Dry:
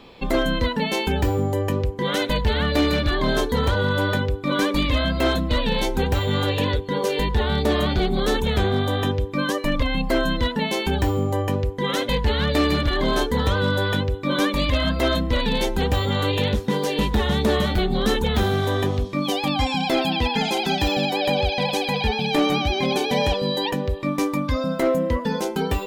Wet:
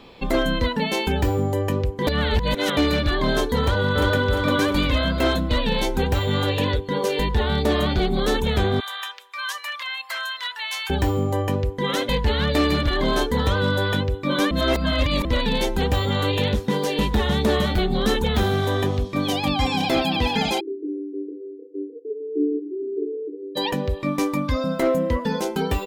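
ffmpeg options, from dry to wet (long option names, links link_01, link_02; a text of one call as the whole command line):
ffmpeg -i in.wav -filter_complex "[0:a]asplit=2[link_01][link_02];[link_02]afade=type=in:start_time=3.6:duration=0.01,afade=type=out:start_time=4.21:duration=0.01,aecho=0:1:350|700|1050|1400|1750|2100:0.749894|0.337452|0.151854|0.0683341|0.0307503|0.0138377[link_03];[link_01][link_03]amix=inputs=2:normalize=0,asettb=1/sr,asplit=3[link_04][link_05][link_06];[link_04]atrim=end=8.804[link_07];[link_05]atrim=start=8.8:end=10.9,asetpts=PTS-STARTPTS,afade=type=in:duration=0.004:curve=qsin,afade=type=out:start_time=2.096:duration=0.004:curve=qsin,highpass=frequency=1100:width=0.5412,highpass=frequency=1100:width=1.3066[link_08];[link_06]atrim=start=10.896[link_09];[link_07][link_08]acrossfade=duration=0.004:curve1=hsin:curve2=qsin[link_10];[link_10][link_09]acrossfade=duration=0.004:curve1=qsin:curve2=hsin,asplit=2[link_11][link_12];[link_12]afade=type=in:start_time=18.66:duration=0.01,afade=type=out:start_time=19.51:duration=0.01,aecho=0:1:490|980|1470|1960|2450|2940|3430|3920|4410:0.334965|0.217728|0.141523|0.0919899|0.0597934|0.0388657|0.0252627|0.0164208|0.0106735[link_13];[link_11][link_13]amix=inputs=2:normalize=0,asplit=3[link_14][link_15][link_16];[link_14]afade=type=out:start_time=20.59:duration=0.02[link_17];[link_15]asuperpass=centerf=360:order=20:qfactor=2,afade=type=in:start_time=20.59:duration=0.02,afade=type=out:start_time=23.55:duration=0.02[link_18];[link_16]afade=type=in:start_time=23.55:duration=0.02[link_19];[link_17][link_18][link_19]amix=inputs=3:normalize=0,asplit=5[link_20][link_21][link_22][link_23][link_24];[link_20]atrim=end=2.072[link_25];[link_21]atrim=start=2.068:end=2.772,asetpts=PTS-STARTPTS,areverse[link_26];[link_22]atrim=start=2.768:end=14.512[link_27];[link_23]atrim=start=14.508:end=15.252,asetpts=PTS-STARTPTS,areverse[link_28];[link_24]atrim=start=15.248[link_29];[link_25][link_26]acrossfade=duration=0.004:curve1=hsin:curve2=hsin[link_30];[link_30][link_27]acrossfade=duration=0.004:curve1=hsin:curve2=hsin[link_31];[link_31][link_28]acrossfade=duration=0.004:curve1=hsin:curve2=hsin[link_32];[link_32][link_29]acrossfade=duration=0.004:curve1=hsin:curve2=hsin" out.wav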